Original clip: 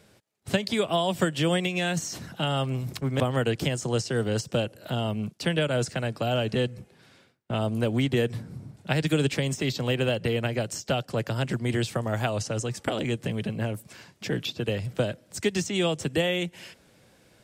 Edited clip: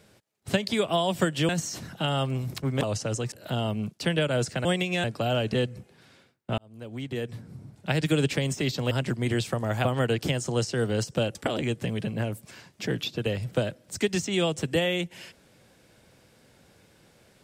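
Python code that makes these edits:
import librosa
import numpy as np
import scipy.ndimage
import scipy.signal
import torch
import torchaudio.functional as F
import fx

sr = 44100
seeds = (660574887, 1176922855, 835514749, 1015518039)

y = fx.edit(x, sr, fx.move(start_s=1.49, length_s=0.39, to_s=6.05),
    fx.swap(start_s=3.22, length_s=1.5, other_s=12.28, other_length_s=0.49),
    fx.fade_in_span(start_s=7.59, length_s=1.45),
    fx.cut(start_s=9.92, length_s=1.42), tone=tone)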